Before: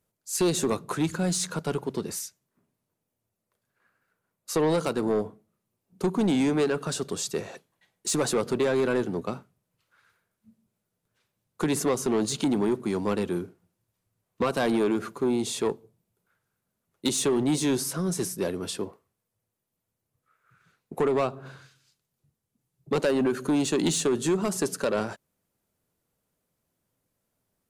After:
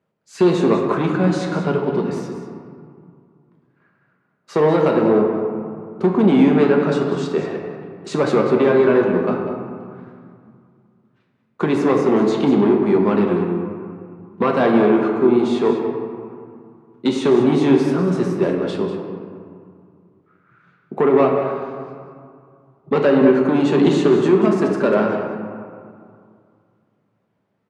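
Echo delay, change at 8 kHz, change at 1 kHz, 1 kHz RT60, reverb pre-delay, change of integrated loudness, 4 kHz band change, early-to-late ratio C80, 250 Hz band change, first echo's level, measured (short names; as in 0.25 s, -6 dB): 0.193 s, under -10 dB, +10.5 dB, 2.3 s, 5 ms, +9.5 dB, +0.5 dB, 4.0 dB, +10.5 dB, -11.0 dB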